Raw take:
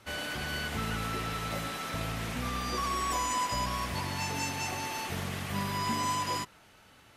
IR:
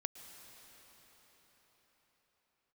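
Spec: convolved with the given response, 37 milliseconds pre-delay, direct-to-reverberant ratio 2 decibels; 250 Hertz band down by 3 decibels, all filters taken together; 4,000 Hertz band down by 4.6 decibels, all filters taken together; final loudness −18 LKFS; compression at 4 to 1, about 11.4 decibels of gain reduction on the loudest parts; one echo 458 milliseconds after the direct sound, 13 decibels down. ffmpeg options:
-filter_complex "[0:a]equalizer=frequency=250:width_type=o:gain=-4,equalizer=frequency=4000:width_type=o:gain=-6.5,acompressor=threshold=-43dB:ratio=4,aecho=1:1:458:0.224,asplit=2[link_01][link_02];[1:a]atrim=start_sample=2205,adelay=37[link_03];[link_02][link_03]afir=irnorm=-1:irlink=0,volume=-0.5dB[link_04];[link_01][link_04]amix=inputs=2:normalize=0,volume=23.5dB"

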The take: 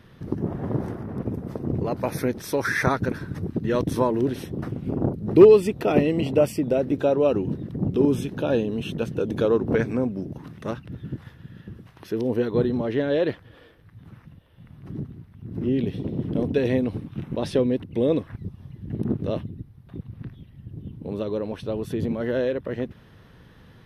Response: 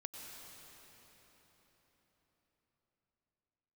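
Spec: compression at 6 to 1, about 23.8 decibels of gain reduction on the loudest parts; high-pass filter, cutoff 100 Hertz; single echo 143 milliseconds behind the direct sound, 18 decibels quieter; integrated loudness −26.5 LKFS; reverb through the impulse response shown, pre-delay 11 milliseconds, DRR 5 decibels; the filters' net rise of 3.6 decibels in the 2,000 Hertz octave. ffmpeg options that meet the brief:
-filter_complex "[0:a]highpass=100,equalizer=frequency=2000:width_type=o:gain=4.5,acompressor=threshold=-34dB:ratio=6,aecho=1:1:143:0.126,asplit=2[link_01][link_02];[1:a]atrim=start_sample=2205,adelay=11[link_03];[link_02][link_03]afir=irnorm=-1:irlink=0,volume=-2.5dB[link_04];[link_01][link_04]amix=inputs=2:normalize=0,volume=11dB"

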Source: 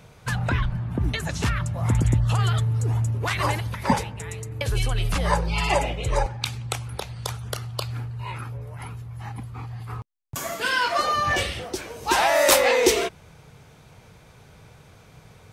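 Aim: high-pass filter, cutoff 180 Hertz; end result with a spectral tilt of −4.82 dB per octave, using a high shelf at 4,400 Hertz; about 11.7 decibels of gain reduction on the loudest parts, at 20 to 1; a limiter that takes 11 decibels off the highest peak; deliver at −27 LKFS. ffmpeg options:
ffmpeg -i in.wav -af "highpass=180,highshelf=frequency=4400:gain=-8,acompressor=threshold=-25dB:ratio=20,volume=8dB,alimiter=limit=-16dB:level=0:latency=1" out.wav

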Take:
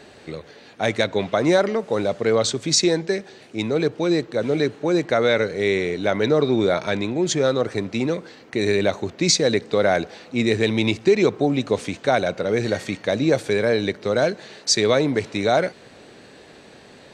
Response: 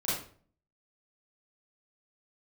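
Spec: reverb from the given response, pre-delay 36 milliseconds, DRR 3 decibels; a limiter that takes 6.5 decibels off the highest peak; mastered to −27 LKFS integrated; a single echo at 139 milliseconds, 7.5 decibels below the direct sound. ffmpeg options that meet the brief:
-filter_complex "[0:a]alimiter=limit=-11dB:level=0:latency=1,aecho=1:1:139:0.422,asplit=2[link_01][link_02];[1:a]atrim=start_sample=2205,adelay=36[link_03];[link_02][link_03]afir=irnorm=-1:irlink=0,volume=-10dB[link_04];[link_01][link_04]amix=inputs=2:normalize=0,volume=-7dB"

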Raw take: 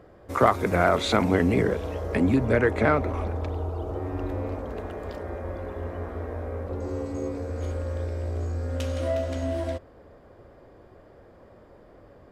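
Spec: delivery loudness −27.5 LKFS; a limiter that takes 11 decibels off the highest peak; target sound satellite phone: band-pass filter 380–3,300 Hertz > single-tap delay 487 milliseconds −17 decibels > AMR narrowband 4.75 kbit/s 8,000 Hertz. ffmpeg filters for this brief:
ffmpeg -i in.wav -af "alimiter=limit=-16.5dB:level=0:latency=1,highpass=380,lowpass=3300,aecho=1:1:487:0.141,volume=8.5dB" -ar 8000 -c:a libopencore_amrnb -b:a 4750 out.amr

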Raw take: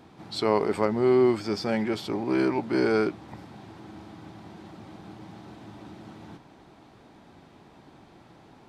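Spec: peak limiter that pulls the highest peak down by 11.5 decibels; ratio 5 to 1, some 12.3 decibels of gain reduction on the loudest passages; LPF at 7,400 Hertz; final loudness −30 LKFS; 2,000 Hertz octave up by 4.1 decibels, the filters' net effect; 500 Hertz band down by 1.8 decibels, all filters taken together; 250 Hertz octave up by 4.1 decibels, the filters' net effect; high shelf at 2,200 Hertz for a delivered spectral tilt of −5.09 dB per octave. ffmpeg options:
ffmpeg -i in.wav -af "lowpass=7400,equalizer=frequency=250:width_type=o:gain=8.5,equalizer=frequency=500:width_type=o:gain=-7.5,equalizer=frequency=2000:width_type=o:gain=8,highshelf=frequency=2200:gain=-4.5,acompressor=threshold=-30dB:ratio=5,volume=11dB,alimiter=limit=-18.5dB:level=0:latency=1" out.wav

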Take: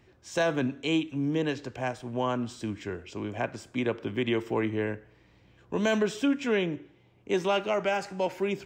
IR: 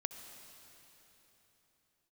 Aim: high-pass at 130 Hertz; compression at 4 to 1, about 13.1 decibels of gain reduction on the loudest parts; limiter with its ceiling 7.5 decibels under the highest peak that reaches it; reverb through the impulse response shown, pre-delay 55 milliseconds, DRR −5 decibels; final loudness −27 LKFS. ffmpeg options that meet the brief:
-filter_complex "[0:a]highpass=130,acompressor=threshold=-38dB:ratio=4,alimiter=level_in=8.5dB:limit=-24dB:level=0:latency=1,volume=-8.5dB,asplit=2[link_01][link_02];[1:a]atrim=start_sample=2205,adelay=55[link_03];[link_02][link_03]afir=irnorm=-1:irlink=0,volume=5.5dB[link_04];[link_01][link_04]amix=inputs=2:normalize=0,volume=9.5dB"

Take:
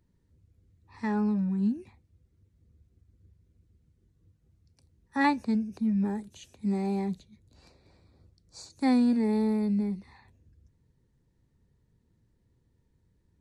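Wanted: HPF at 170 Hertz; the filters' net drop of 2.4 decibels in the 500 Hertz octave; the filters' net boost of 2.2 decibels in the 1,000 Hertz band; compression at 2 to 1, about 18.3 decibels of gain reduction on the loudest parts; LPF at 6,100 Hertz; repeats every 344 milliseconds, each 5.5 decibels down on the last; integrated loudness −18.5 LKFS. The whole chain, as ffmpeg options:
ffmpeg -i in.wav -af "highpass=170,lowpass=6100,equalizer=frequency=500:width_type=o:gain=-3.5,equalizer=frequency=1000:width_type=o:gain=4,acompressor=threshold=-54dB:ratio=2,aecho=1:1:344|688|1032|1376|1720|2064|2408:0.531|0.281|0.149|0.079|0.0419|0.0222|0.0118,volume=27dB" out.wav

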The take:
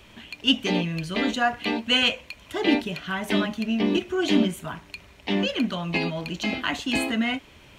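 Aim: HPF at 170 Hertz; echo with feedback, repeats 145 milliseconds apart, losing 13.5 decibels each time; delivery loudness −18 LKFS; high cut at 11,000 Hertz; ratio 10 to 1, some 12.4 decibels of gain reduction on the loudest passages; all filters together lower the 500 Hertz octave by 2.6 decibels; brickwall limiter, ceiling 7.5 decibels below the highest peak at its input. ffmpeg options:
ffmpeg -i in.wav -af "highpass=170,lowpass=11000,equalizer=frequency=500:width_type=o:gain=-3.5,acompressor=threshold=-29dB:ratio=10,alimiter=limit=-24dB:level=0:latency=1,aecho=1:1:145|290:0.211|0.0444,volume=16.5dB" out.wav

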